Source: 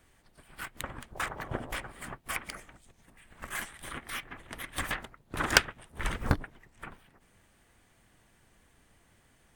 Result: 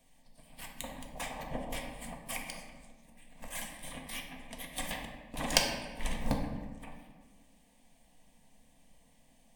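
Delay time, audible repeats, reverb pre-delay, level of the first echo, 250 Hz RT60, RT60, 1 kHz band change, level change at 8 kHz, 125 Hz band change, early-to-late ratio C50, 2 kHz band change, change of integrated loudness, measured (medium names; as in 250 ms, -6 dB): no echo, no echo, 3 ms, no echo, 1.9 s, 1.4 s, -4.0 dB, 0.0 dB, -5.0 dB, 4.5 dB, -8.0 dB, -3.5 dB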